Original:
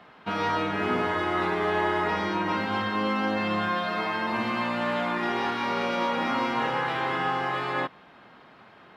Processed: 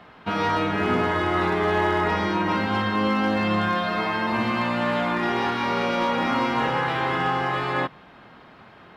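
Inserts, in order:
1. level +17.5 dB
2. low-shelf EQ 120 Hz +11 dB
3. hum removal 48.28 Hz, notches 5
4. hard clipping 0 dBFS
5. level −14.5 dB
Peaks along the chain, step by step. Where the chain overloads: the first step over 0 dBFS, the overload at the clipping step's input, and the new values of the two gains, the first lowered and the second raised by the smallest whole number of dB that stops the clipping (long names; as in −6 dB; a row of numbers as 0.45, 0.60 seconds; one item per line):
+4.0, +4.5, +4.5, 0.0, −14.5 dBFS
step 1, 4.5 dB
step 1 +12.5 dB, step 5 −9.5 dB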